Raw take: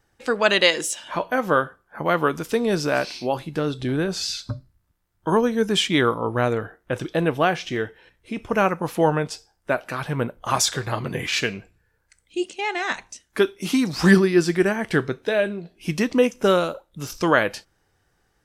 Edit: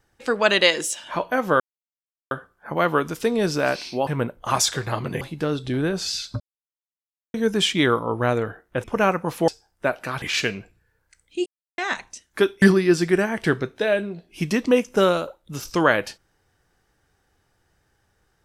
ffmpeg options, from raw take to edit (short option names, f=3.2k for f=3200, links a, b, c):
-filter_complex "[0:a]asplit=12[a][b][c][d][e][f][g][h][i][j][k][l];[a]atrim=end=1.6,asetpts=PTS-STARTPTS,afade=t=out:st=1.596:d=0.004:c=hsin,apad=pad_dur=0.71[m];[b]atrim=start=1.6:end=3.362,asetpts=PTS-STARTPTS,afade=t=in:d=0.004:c=hsin[n];[c]atrim=start=10.068:end=11.212[o];[d]atrim=start=3.358:end=4.55,asetpts=PTS-STARTPTS,afade=t=out:st=1.188:d=0.004:c=hsin[p];[e]atrim=start=4.55:end=5.49,asetpts=PTS-STARTPTS,volume=0[q];[f]atrim=start=5.49:end=6.992,asetpts=PTS-STARTPTS,afade=t=in:d=0.004:c=hsin[r];[g]atrim=start=8.408:end=9.052[s];[h]atrim=start=9.328:end=10.072[t];[i]atrim=start=11.208:end=12.45,asetpts=PTS-STARTPTS,afade=t=out:st=1.238:d=0.004:c=hsin[u];[j]atrim=start=12.45:end=12.77,asetpts=PTS-STARTPTS,volume=0[v];[k]atrim=start=12.77:end=13.612,asetpts=PTS-STARTPTS,afade=t=in:d=0.004:c=hsin[w];[l]atrim=start=14.088[x];[m][n]concat=n=2:v=0:a=1[y];[y][o]acrossfade=d=0.004:c1=hsin:c2=hsin[z];[p][q][r]concat=n=3:v=0:a=1[aa];[z][aa]acrossfade=d=0.004:c1=hsin:c2=hsin[ab];[ab][s]acrossfade=d=0.004:c1=hsin:c2=hsin[ac];[ac][t]acrossfade=d=0.004:c1=hsin:c2=hsin[ad];[u][v][w]concat=n=3:v=0:a=1[ae];[ad][ae]acrossfade=d=0.004:c1=hsin:c2=hsin[af];[af][x]acrossfade=d=0.004:c1=hsin:c2=hsin"